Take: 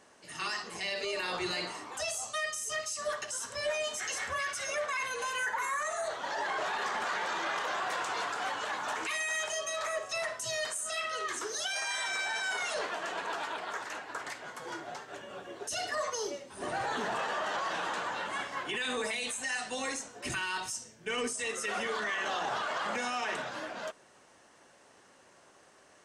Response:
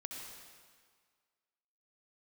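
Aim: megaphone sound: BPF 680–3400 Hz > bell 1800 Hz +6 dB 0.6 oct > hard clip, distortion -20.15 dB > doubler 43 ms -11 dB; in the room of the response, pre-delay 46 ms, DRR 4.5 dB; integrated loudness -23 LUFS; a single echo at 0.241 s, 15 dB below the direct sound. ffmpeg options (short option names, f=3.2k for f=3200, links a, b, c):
-filter_complex "[0:a]aecho=1:1:241:0.178,asplit=2[a][b];[1:a]atrim=start_sample=2205,adelay=46[c];[b][c]afir=irnorm=-1:irlink=0,volume=-3dB[d];[a][d]amix=inputs=2:normalize=0,highpass=680,lowpass=3.4k,equalizer=f=1.8k:t=o:w=0.6:g=6,asoftclip=type=hard:threshold=-25.5dB,asplit=2[e][f];[f]adelay=43,volume=-11dB[g];[e][g]amix=inputs=2:normalize=0,volume=9dB"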